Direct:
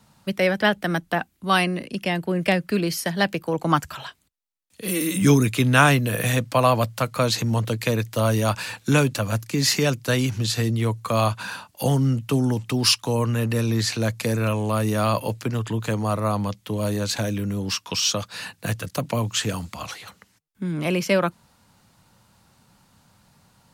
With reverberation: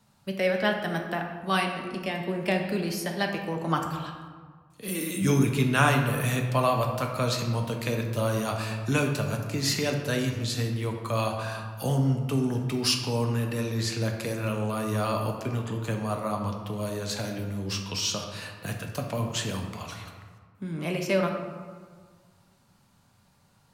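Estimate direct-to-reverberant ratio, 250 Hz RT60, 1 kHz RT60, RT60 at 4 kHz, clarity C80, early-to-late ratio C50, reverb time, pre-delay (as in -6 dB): 2.0 dB, 1.8 s, 1.7 s, 0.90 s, 7.0 dB, 5.0 dB, 1.6 s, 5 ms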